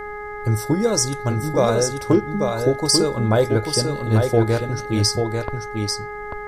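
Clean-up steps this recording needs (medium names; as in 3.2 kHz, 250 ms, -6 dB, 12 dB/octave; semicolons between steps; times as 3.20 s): clip repair -6.5 dBFS; de-hum 416.8 Hz, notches 5; noise print and reduce 30 dB; inverse comb 841 ms -5 dB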